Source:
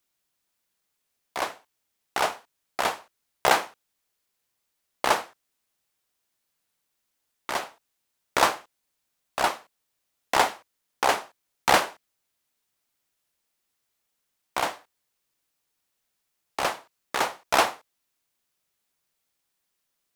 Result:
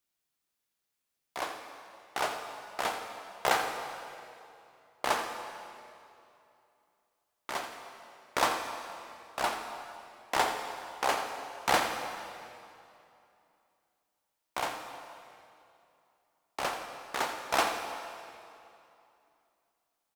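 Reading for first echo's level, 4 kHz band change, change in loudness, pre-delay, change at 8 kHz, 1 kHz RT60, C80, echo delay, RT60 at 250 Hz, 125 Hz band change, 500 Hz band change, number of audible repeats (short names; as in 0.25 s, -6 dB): -11.5 dB, -5.5 dB, -7.5 dB, 6 ms, -5.5 dB, 2.7 s, 5.5 dB, 85 ms, 2.8 s, -5.5 dB, -5.5 dB, 1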